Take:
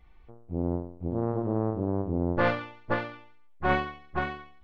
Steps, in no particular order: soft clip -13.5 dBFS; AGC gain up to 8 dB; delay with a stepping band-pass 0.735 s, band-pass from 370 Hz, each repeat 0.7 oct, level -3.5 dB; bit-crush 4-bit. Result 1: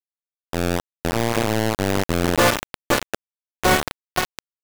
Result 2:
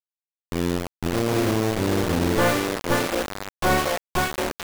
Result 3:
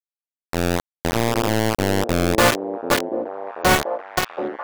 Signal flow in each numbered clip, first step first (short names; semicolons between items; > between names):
delay with a stepping band-pass > bit-crush > soft clip > AGC; AGC > delay with a stepping band-pass > bit-crush > soft clip; soft clip > bit-crush > AGC > delay with a stepping band-pass